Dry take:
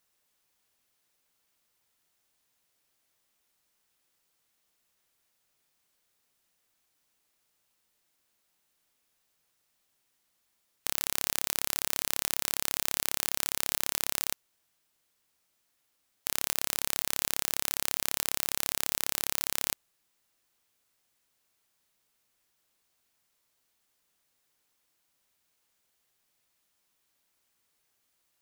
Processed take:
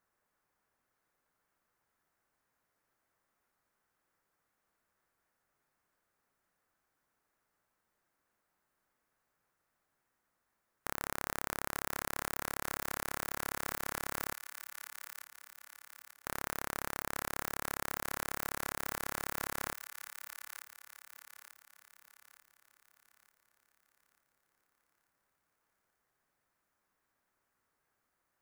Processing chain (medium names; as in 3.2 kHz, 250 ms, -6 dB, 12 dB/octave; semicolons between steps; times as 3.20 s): resonant high shelf 2.2 kHz -11.5 dB, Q 1.5; feedback echo behind a high-pass 890 ms, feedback 45%, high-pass 1.6 kHz, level -6.5 dB